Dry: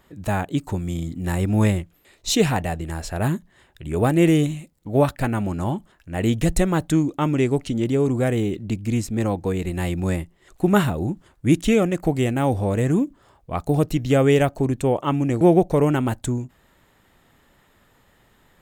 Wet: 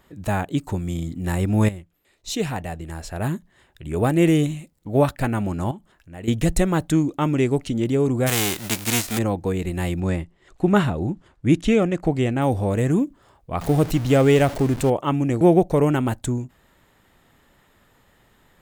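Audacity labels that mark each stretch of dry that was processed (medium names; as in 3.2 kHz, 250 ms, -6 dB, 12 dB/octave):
1.690000	5.160000	fade in equal-power, from -13 dB
5.710000	6.280000	compression 1.5:1, threshold -54 dBFS
8.260000	9.170000	formants flattened exponent 0.3
10.000000	12.420000	distance through air 60 m
13.610000	14.900000	jump at every zero crossing of -27.5 dBFS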